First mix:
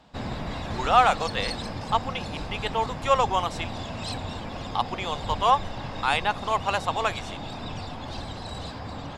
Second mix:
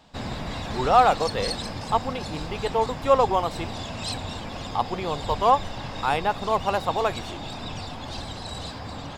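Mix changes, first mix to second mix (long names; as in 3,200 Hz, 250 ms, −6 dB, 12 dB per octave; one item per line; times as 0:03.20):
speech: remove meter weighting curve ITU-R 468
master: add high-shelf EQ 3,900 Hz +7 dB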